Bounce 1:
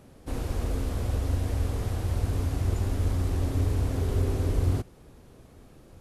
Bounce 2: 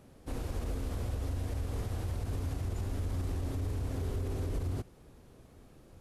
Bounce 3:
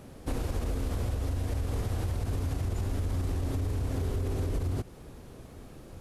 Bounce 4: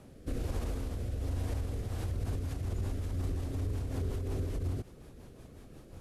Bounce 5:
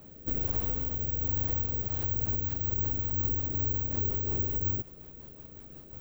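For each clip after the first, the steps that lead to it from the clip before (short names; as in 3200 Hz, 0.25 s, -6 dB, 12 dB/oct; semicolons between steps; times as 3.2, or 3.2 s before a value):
limiter -22.5 dBFS, peak gain reduction 8.5 dB; gain -4.5 dB
compressor, threshold -36 dBFS, peak gain reduction 6 dB; gain +9 dB
rotary speaker horn 1.2 Hz, later 5.5 Hz, at 1.61; gain -2.5 dB
careless resampling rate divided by 2×, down filtered, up zero stuff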